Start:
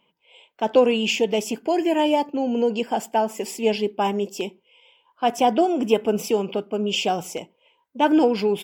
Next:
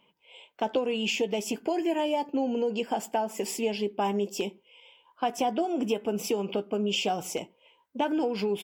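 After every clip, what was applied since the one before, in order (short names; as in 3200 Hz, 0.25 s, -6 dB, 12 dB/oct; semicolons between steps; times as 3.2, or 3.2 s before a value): compressor 4:1, threshold -26 dBFS, peak gain reduction 13 dB; doubler 15 ms -12 dB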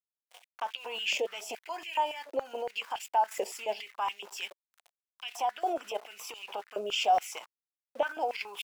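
sample gate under -45 dBFS; level quantiser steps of 11 dB; stepped high-pass 7.1 Hz 570–2600 Hz; gain +1 dB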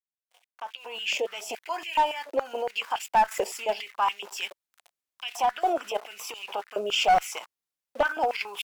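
opening faded in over 1.64 s; dynamic EQ 1300 Hz, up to +5 dB, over -43 dBFS, Q 1.6; one-sided clip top -23 dBFS; gain +5 dB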